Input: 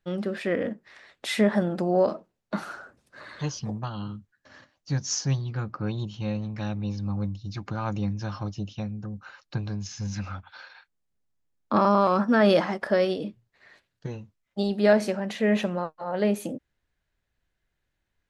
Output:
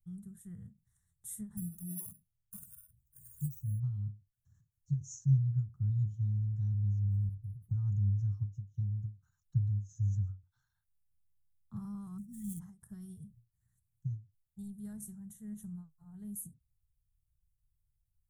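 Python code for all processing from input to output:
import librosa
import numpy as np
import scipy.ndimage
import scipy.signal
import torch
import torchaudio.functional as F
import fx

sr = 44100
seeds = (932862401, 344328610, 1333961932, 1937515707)

y = fx.chain(x, sr, fx.phaser_stages(stages=6, low_hz=150.0, high_hz=1400.0, hz=3.8, feedback_pct=10),
    fx.high_shelf(hz=3300.0, db=8.0),
    fx.resample_bad(factor=4, down='filtered', up='hold'), at=(1.57, 3.8))
y = fx.chain(y, sr, fx.level_steps(step_db=10),
    fx.dispersion(late='highs', ms=122.0, hz=1800.0),
    fx.resample_linear(factor=6), at=(7.06, 7.71))
y = fx.chain(y, sr, fx.median_filter(points=9),
    fx.brickwall_bandstop(low_hz=360.0, high_hz=1800.0), at=(12.18, 12.6))
y = scipy.signal.sosfilt(scipy.signal.cheby2(4, 40, [260.0, 5100.0], 'bandstop', fs=sr, output='sos'), y)
y = fx.end_taper(y, sr, db_per_s=210.0)
y = y * librosa.db_to_amplitude(2.5)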